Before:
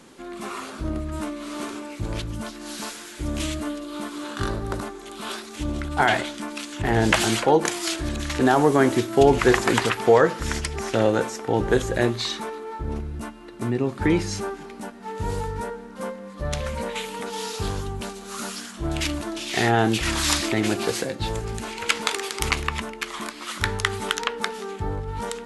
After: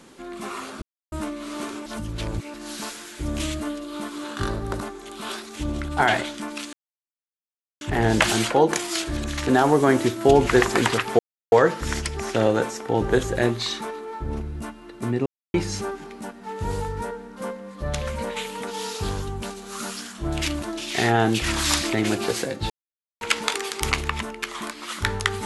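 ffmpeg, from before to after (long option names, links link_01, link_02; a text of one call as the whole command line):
ffmpeg -i in.wav -filter_complex "[0:a]asplit=11[link_01][link_02][link_03][link_04][link_05][link_06][link_07][link_08][link_09][link_10][link_11];[link_01]atrim=end=0.82,asetpts=PTS-STARTPTS,afade=type=out:start_time=0.816:duration=0.004:curve=hsin[link_12];[link_02]atrim=start=0.82:end=1.12,asetpts=PTS-STARTPTS,volume=0[link_13];[link_03]atrim=start=1.12:end=1.862,asetpts=PTS-STARTPTS,afade=type=in:duration=0.004:curve=hsin[link_14];[link_04]atrim=start=1.858:end=2.542,asetpts=PTS-STARTPTS,areverse[link_15];[link_05]atrim=start=2.538:end=6.73,asetpts=PTS-STARTPTS,afade=type=out:start_time=4.188:duration=0.004:curve=hsin,apad=pad_dur=1.08[link_16];[link_06]atrim=start=6.73:end=10.11,asetpts=PTS-STARTPTS,afade=type=in:duration=0.004:curve=hsin,afade=type=out:start_time=3.376:duration=0.004:curve=hsin,apad=pad_dur=0.33[link_17];[link_07]atrim=start=10.11:end=13.85,asetpts=PTS-STARTPTS,afade=type=in:duration=0.004:curve=hsin,afade=type=out:start_time=3.736:duration=0.004:curve=hsin[link_18];[link_08]atrim=start=13.85:end=14.13,asetpts=PTS-STARTPTS,volume=0[link_19];[link_09]atrim=start=14.13:end=21.29,asetpts=PTS-STARTPTS,afade=type=in:duration=0.004:curve=hsin,afade=type=out:start_time=7.156:duration=0.004:curve=hsin[link_20];[link_10]atrim=start=21.29:end=21.8,asetpts=PTS-STARTPTS,volume=0[link_21];[link_11]atrim=start=21.8,asetpts=PTS-STARTPTS,afade=type=in:duration=0.004:curve=hsin[link_22];[link_12][link_13][link_14]concat=n=3:v=0:a=1[link_23];[link_23][link_15]acrossfade=duration=0.004:curve1=hsin:curve2=hsin[link_24];[link_16][link_17][link_18][link_19][link_20][link_21][link_22]concat=n=7:v=0:a=1[link_25];[link_24][link_25]acrossfade=duration=0.004:curve1=hsin:curve2=hsin" out.wav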